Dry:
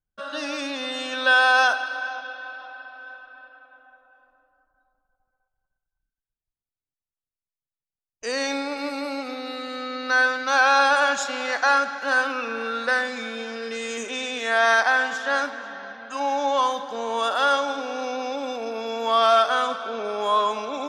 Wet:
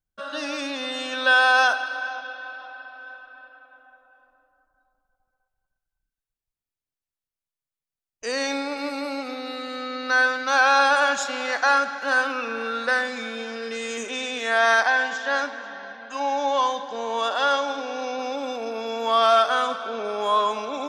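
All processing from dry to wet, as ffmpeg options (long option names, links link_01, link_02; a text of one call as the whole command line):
ffmpeg -i in.wav -filter_complex "[0:a]asettb=1/sr,asplit=3[link_01][link_02][link_03];[link_01]atrim=end=14.874[link_04];[link_02]atrim=start=14.87:end=18.19,asetpts=PTS-STARTPTS,afade=type=in:duration=0.004:curve=qsin,afade=type=out:start_time=3.316:duration=0.004:curve=qsin,lowpass=frequency=7400:width=0.5412,lowpass=frequency=7400:width=1.3066,lowshelf=frequency=120:gain=-8.5,bandreject=frequency=1300:width=10[link_05];[link_03]atrim=start=18.186[link_06];[link_04][link_05]acrossfade=duration=0.004:curve1=hsin:curve2=qsin[link_07];[link_07][link_06]acrossfade=duration=0.004:curve1=qsin:curve2=hsin" out.wav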